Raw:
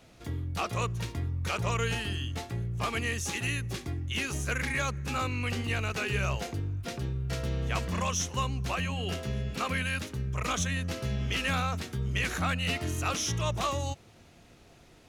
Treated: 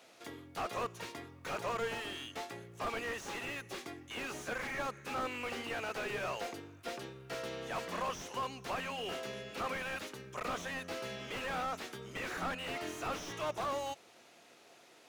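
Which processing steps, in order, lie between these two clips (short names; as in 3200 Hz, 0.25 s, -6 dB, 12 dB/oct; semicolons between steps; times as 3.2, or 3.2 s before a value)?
HPF 420 Hz 12 dB/oct; slew limiter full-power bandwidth 22 Hz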